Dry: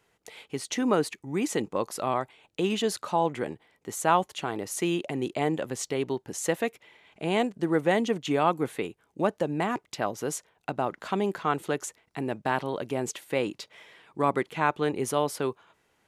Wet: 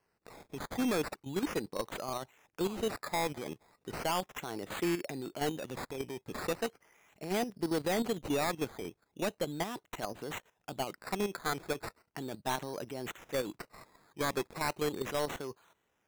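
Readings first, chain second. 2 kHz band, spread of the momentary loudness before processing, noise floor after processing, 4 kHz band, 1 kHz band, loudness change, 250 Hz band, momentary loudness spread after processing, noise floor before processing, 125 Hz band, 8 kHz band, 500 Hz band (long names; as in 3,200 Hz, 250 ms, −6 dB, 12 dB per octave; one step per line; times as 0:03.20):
−6.0 dB, 11 LU, −79 dBFS, −3.5 dB, −9.0 dB, −7.0 dB, −7.0 dB, 12 LU, −72 dBFS, −7.5 dB, −7.5 dB, −7.5 dB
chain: sample-and-hold swept by an LFO 12×, swing 60% 0.37 Hz
output level in coarse steps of 13 dB
soft clipping −25.5 dBFS, distortion −10 dB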